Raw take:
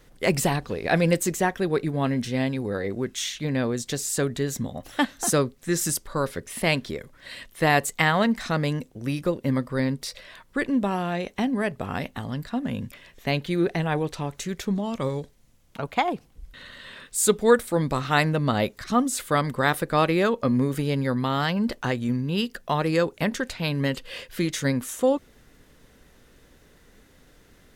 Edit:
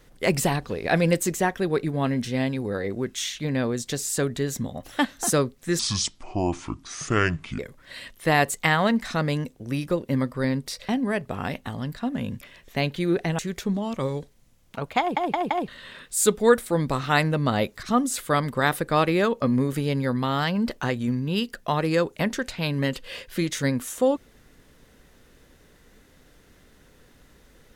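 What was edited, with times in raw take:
5.79–6.94 s: speed 64%
10.24–11.39 s: delete
13.89–14.40 s: delete
16.01 s: stutter in place 0.17 s, 4 plays

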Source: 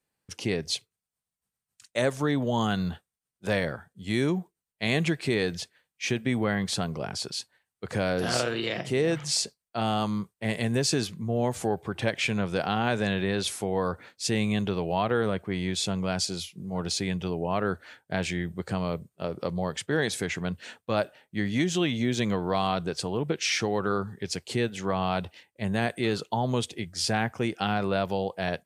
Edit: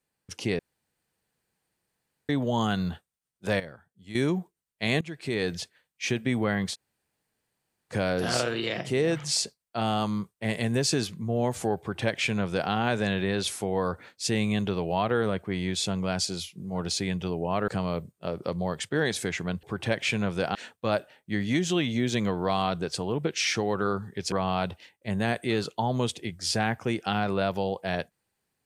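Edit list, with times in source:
0.59–2.29 s: room tone
3.60–4.15 s: gain -12 dB
5.01–5.50 s: fade in, from -22.5 dB
6.73–7.92 s: room tone, crossfade 0.06 s
11.79–12.71 s: copy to 20.60 s
17.68–18.65 s: delete
24.37–24.86 s: delete

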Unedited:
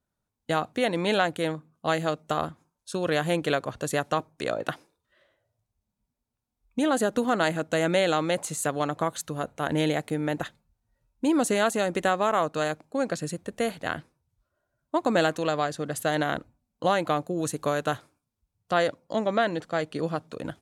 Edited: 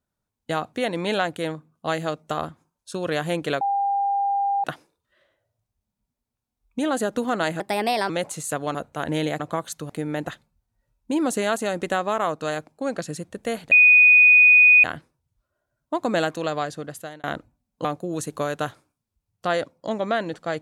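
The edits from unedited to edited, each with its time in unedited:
3.61–4.64 s: bleep 799 Hz -19.5 dBFS
7.60–8.23 s: speed 127%
8.88–9.38 s: move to 10.03 s
13.85 s: add tone 2.48 kHz -9.5 dBFS 1.12 s
15.71–16.25 s: fade out
16.86–17.11 s: delete

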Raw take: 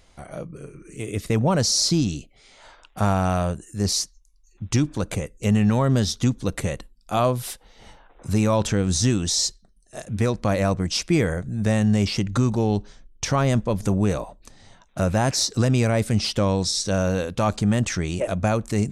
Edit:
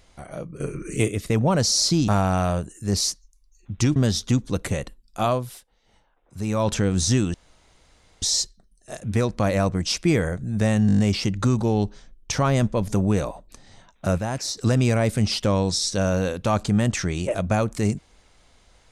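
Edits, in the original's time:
0.60–1.08 s: gain +10.5 dB
2.08–3.00 s: delete
4.88–5.89 s: delete
7.14–8.65 s: dip -14.5 dB, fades 0.40 s linear
9.27 s: insert room tone 0.88 s
11.92 s: stutter 0.02 s, 7 plays
15.11–15.50 s: gain -6.5 dB

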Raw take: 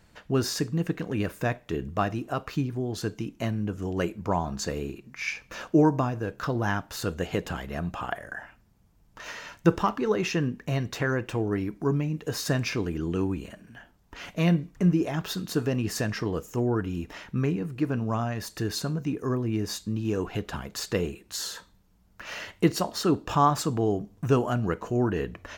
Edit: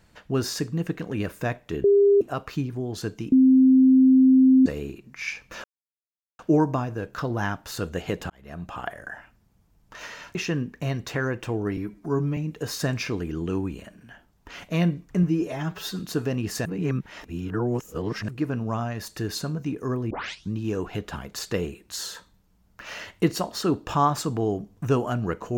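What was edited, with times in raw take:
1.84–2.21 s: bleep 402 Hz -13.5 dBFS
3.32–4.66 s: bleep 261 Hz -12 dBFS
5.64 s: insert silence 0.75 s
7.55–8.31 s: fade in equal-power
9.60–10.21 s: delete
11.63–12.03 s: stretch 1.5×
14.89–15.40 s: stretch 1.5×
16.06–17.69 s: reverse
19.51 s: tape start 0.41 s

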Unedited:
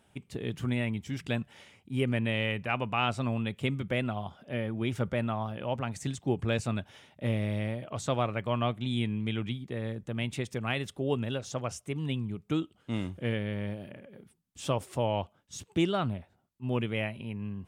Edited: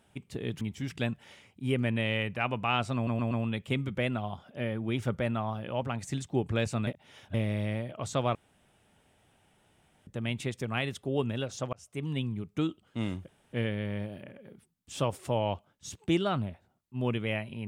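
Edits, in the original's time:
0.61–0.90 s: delete
3.24 s: stutter 0.12 s, 4 plays
6.80–7.27 s: reverse
8.28–10.00 s: room tone
11.66–11.97 s: fade in
13.21 s: insert room tone 0.25 s

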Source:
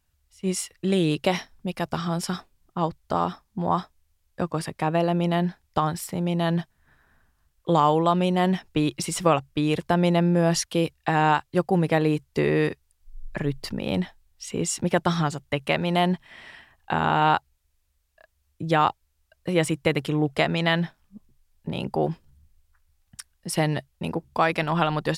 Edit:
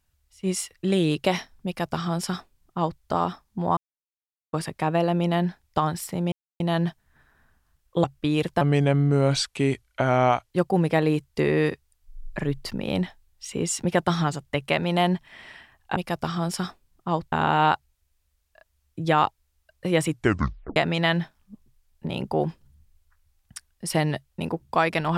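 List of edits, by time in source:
1.66–3.02 s: copy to 16.95 s
3.77–4.53 s: mute
6.32 s: insert silence 0.28 s
7.76–9.37 s: delete
9.94–11.50 s: speed 82%
19.72 s: tape stop 0.67 s

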